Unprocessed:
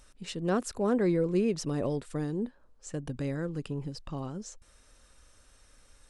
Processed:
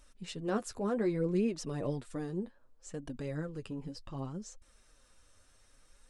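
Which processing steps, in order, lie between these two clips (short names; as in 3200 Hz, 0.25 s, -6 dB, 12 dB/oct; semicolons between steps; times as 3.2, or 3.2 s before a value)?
flange 0.65 Hz, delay 3 ms, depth 8.7 ms, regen +24%; gain -1 dB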